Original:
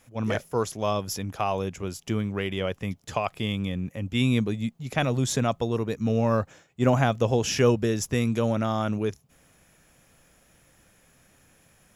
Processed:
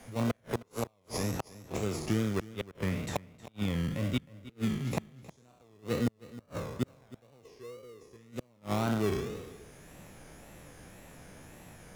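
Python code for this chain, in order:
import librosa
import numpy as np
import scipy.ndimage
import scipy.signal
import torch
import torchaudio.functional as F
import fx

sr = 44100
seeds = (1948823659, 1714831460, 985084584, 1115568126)

p1 = fx.spec_trails(x, sr, decay_s=0.98)
p2 = fx.peak_eq(p1, sr, hz=460.0, db=14.5, octaves=0.66, at=(7.45, 8.16))
p3 = fx.gate_flip(p2, sr, shuts_db=-14.0, range_db=-42)
p4 = fx.sample_hold(p3, sr, seeds[0], rate_hz=1600.0, jitter_pct=0)
p5 = p3 + (p4 * librosa.db_to_amplitude(-3.0))
p6 = fx.wow_flutter(p5, sr, seeds[1], rate_hz=2.1, depth_cents=130.0)
p7 = p6 + fx.echo_single(p6, sr, ms=313, db=-20.0, dry=0)
p8 = fx.band_squash(p7, sr, depth_pct=40)
y = p8 * librosa.db_to_amplitude(-6.0)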